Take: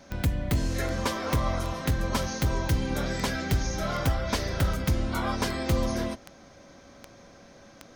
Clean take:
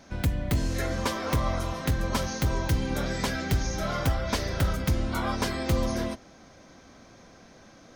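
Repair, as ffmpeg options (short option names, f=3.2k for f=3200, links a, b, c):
-af "adeclick=t=4,bandreject=f=560:w=30"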